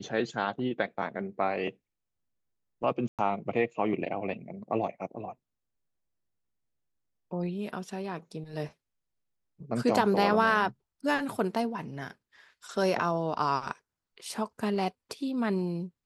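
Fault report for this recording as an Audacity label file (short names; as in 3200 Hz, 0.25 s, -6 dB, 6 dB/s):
3.080000	3.190000	gap 0.107 s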